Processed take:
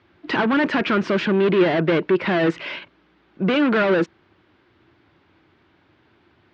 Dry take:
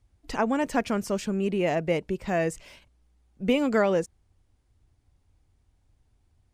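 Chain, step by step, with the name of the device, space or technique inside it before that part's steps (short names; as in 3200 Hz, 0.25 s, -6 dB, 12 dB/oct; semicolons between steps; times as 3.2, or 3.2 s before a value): overdrive pedal into a guitar cabinet (overdrive pedal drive 31 dB, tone 2700 Hz, clips at -10.5 dBFS; speaker cabinet 110–3900 Hz, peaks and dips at 170 Hz +4 dB, 340 Hz +9 dB, 490 Hz -3 dB, 750 Hz -6 dB, 1500 Hz +4 dB); gain -1.5 dB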